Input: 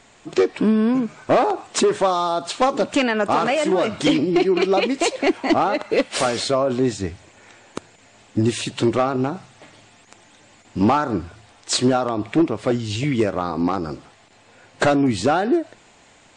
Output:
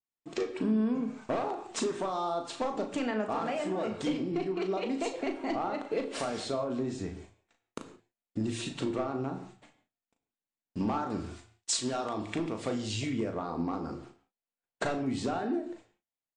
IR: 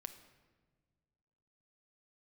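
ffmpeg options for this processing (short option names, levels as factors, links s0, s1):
-filter_complex "[0:a]agate=range=0.00794:threshold=0.00708:ratio=16:detection=peak,asettb=1/sr,asplit=3[s0][s1][s2];[s0]atrim=end=11.104[s3];[s1]atrim=start=11.1:end=13.1,asetpts=PTS-STARTPTS,afade=t=in:d=0.004:c=qsin,afade=t=out:st=1.996:d=0.004:c=qsin,highshelf=f=2300:g=12[s4];[s2]atrim=start=13.096[s5];[s3][s4]acrossfade=d=0.004:c1=hsin:c2=qsin[s6];[s6][s5]acrossfade=d=0.004:c1=qsin:c2=hsin,acompressor=threshold=0.112:ratio=6,asplit=2[s7][s8];[s8]adelay=37,volume=0.398[s9];[s7][s9]amix=inputs=2:normalize=0[s10];[1:a]atrim=start_sample=2205,afade=t=out:st=0.31:d=0.01,atrim=end_sample=14112,asetrate=61740,aresample=44100[s11];[s10][s11]afir=irnorm=-1:irlink=0,adynamicequalizer=threshold=0.00501:dfrequency=1600:dqfactor=0.7:tfrequency=1600:tqfactor=0.7:attack=5:release=100:ratio=0.375:range=2.5:mode=cutabove:tftype=highshelf,volume=0.794"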